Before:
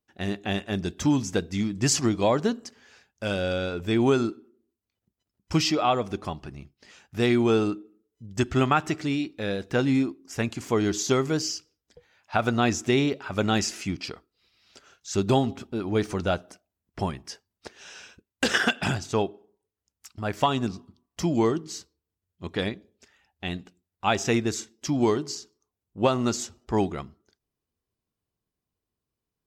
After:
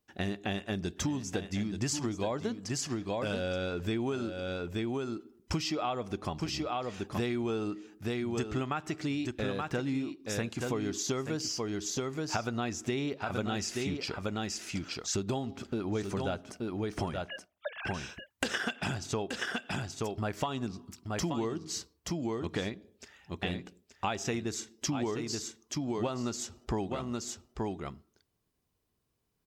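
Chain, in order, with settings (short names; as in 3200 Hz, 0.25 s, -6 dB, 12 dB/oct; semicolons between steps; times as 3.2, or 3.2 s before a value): 17.25–17.94 sine-wave speech; echo 0.877 s -8.5 dB; compressor 6:1, threshold -36 dBFS, peak gain reduction 18.5 dB; gain +5 dB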